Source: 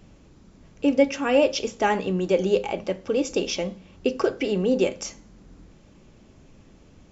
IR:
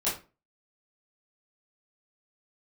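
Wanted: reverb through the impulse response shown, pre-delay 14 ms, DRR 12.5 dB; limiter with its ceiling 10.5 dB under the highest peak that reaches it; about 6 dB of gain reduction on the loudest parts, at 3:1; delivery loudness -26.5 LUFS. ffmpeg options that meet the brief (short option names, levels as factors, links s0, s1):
-filter_complex "[0:a]acompressor=threshold=0.0794:ratio=3,alimiter=limit=0.0708:level=0:latency=1,asplit=2[s0][s1];[1:a]atrim=start_sample=2205,adelay=14[s2];[s1][s2]afir=irnorm=-1:irlink=0,volume=0.0891[s3];[s0][s3]amix=inputs=2:normalize=0,volume=2"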